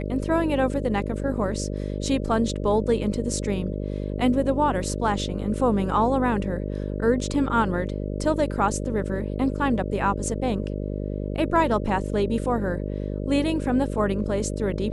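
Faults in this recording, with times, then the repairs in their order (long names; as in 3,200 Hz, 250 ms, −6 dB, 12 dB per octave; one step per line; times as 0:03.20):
mains buzz 50 Hz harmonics 12 −29 dBFS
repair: hum removal 50 Hz, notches 12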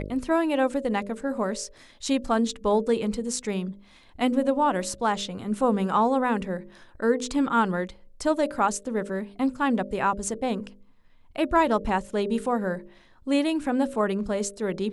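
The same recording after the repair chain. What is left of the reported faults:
none of them is left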